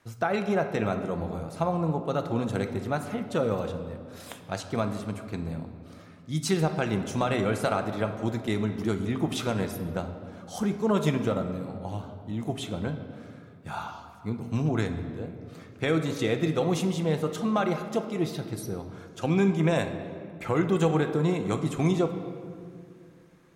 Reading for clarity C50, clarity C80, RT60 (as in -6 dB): 8.5 dB, 10.0 dB, 2.4 s